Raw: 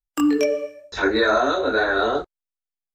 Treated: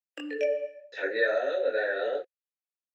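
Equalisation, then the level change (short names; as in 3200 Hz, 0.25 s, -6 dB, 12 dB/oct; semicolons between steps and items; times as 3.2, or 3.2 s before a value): vowel filter e; low shelf 440 Hz -11 dB; +5.5 dB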